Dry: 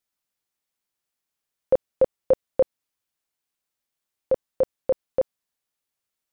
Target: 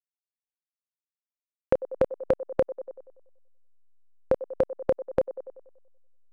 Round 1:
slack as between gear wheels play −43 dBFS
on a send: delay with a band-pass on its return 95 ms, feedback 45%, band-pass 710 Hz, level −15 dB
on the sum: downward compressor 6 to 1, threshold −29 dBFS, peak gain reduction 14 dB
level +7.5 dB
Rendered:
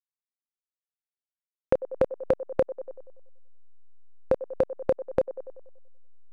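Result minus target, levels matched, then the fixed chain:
slack as between gear wheels: distortion +12 dB
slack as between gear wheels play −53.5 dBFS
on a send: delay with a band-pass on its return 95 ms, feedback 45%, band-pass 710 Hz, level −15 dB
on the sum: downward compressor 6 to 1, threshold −29 dBFS, peak gain reduction 14 dB
level +7.5 dB

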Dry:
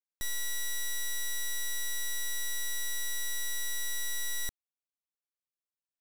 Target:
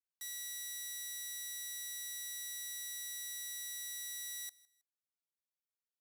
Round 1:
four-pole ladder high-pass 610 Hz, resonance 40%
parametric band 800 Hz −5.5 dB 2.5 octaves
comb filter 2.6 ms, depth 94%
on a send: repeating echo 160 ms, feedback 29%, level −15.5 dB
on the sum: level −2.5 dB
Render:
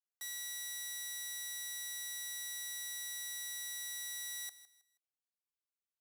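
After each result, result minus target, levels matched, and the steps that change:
1,000 Hz band +6.5 dB; echo-to-direct +7 dB
change: parametric band 800 Hz −13.5 dB 2.5 octaves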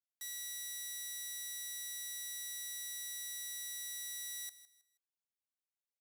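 echo-to-direct +7 dB
change: repeating echo 160 ms, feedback 29%, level −22.5 dB

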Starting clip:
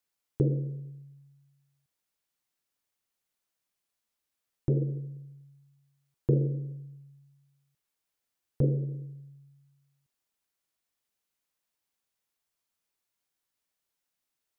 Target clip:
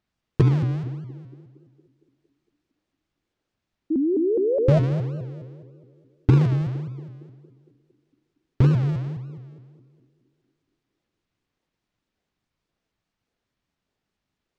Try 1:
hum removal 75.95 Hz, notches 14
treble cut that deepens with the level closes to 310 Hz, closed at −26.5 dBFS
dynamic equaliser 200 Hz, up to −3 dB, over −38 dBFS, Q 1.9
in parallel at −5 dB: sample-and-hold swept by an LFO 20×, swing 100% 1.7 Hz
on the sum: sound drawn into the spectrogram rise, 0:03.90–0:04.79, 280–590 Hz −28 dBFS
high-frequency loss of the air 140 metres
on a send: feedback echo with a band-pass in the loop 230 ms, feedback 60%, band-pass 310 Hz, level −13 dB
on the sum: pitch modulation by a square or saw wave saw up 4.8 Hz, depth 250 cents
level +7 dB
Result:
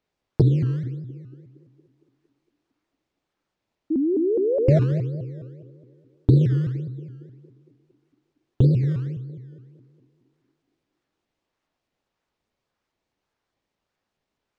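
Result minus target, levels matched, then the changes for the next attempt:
sample-and-hold swept by an LFO: distortion −11 dB
change: sample-and-hold swept by an LFO 66×, swing 100% 1.7 Hz

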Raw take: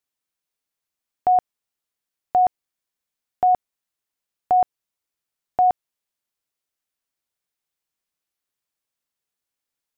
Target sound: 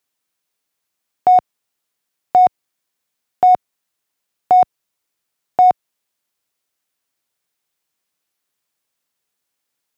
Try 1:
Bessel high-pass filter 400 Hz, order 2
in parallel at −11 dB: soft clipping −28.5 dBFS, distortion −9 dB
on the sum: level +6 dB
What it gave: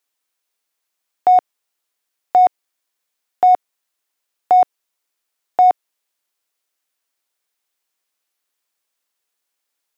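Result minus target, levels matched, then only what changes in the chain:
125 Hz band −12.0 dB
change: Bessel high-pass filter 100 Hz, order 2

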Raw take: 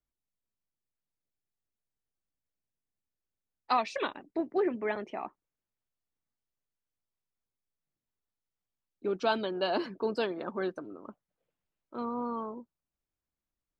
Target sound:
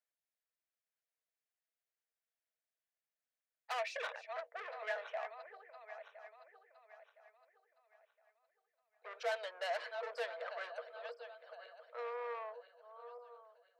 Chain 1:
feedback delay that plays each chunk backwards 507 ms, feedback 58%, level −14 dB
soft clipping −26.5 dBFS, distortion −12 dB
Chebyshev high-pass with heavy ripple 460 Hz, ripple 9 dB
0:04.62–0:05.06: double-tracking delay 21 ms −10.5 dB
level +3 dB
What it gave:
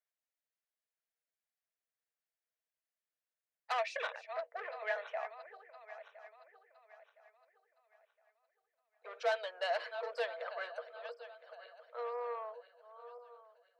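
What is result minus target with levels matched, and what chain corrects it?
soft clipping: distortion −5 dB
feedback delay that plays each chunk backwards 507 ms, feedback 58%, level −14 dB
soft clipping −33 dBFS, distortion −7 dB
Chebyshev high-pass with heavy ripple 460 Hz, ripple 9 dB
0:04.62–0:05.06: double-tracking delay 21 ms −10.5 dB
level +3 dB

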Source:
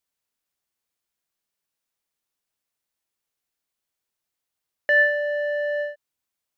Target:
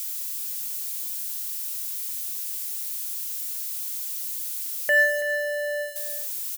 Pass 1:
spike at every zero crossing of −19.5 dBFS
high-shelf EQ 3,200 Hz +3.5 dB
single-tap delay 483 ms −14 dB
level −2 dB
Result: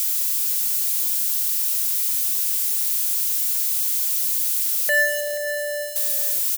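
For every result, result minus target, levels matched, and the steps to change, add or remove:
echo 152 ms late; spike at every zero crossing: distortion +9 dB
change: single-tap delay 331 ms −14 dB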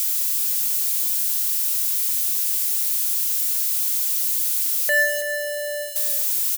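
spike at every zero crossing: distortion +9 dB
change: spike at every zero crossing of −29 dBFS

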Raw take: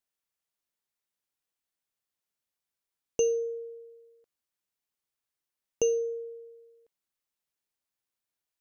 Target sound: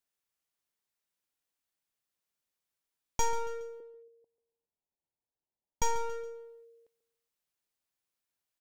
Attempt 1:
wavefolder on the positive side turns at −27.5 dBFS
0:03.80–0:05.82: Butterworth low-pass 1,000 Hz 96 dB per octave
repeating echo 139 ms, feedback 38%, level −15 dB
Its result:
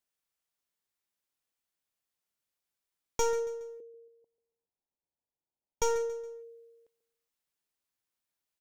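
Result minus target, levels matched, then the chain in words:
wavefolder on the positive side: distortion −11 dB
wavefolder on the positive side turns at −36.5 dBFS
0:03.80–0:05.82: Butterworth low-pass 1,000 Hz 96 dB per octave
repeating echo 139 ms, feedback 38%, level −15 dB

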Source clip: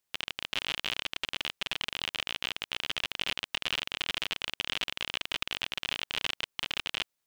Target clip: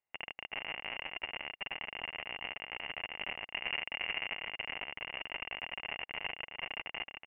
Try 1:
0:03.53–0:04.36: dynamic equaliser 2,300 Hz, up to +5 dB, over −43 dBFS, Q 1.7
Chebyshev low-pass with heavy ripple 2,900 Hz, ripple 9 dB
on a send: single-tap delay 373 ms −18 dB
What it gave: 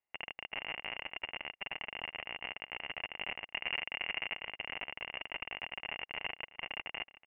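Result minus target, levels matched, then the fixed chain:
echo-to-direct −11 dB
0:03.53–0:04.36: dynamic equaliser 2,300 Hz, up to +5 dB, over −43 dBFS, Q 1.7
Chebyshev low-pass with heavy ripple 2,900 Hz, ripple 9 dB
on a send: single-tap delay 373 ms −7 dB

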